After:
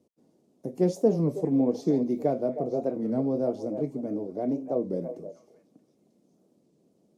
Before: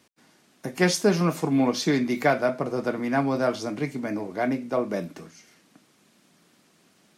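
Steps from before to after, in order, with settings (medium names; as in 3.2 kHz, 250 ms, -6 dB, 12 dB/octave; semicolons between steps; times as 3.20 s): FFT filter 110 Hz 0 dB, 500 Hz +5 dB, 1.6 kHz -25 dB, 6.6 kHz -13 dB; repeats whose band climbs or falls 314 ms, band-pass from 680 Hz, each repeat 1.4 oct, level -7 dB; warped record 33 1/3 rpm, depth 160 cents; trim -4.5 dB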